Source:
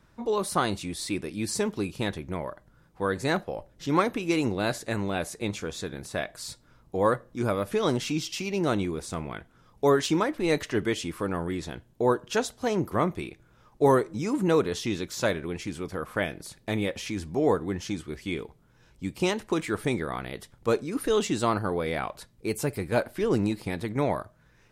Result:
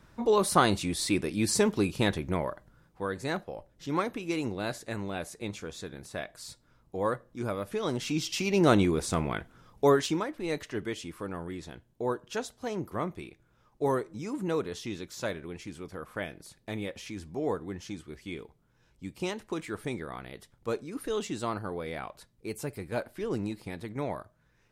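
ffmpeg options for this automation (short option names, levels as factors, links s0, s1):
-af "volume=4.73,afade=t=out:st=2.34:d=0.74:silence=0.354813,afade=t=in:st=7.91:d=0.8:silence=0.298538,afade=t=out:st=9.36:d=0.89:silence=0.251189"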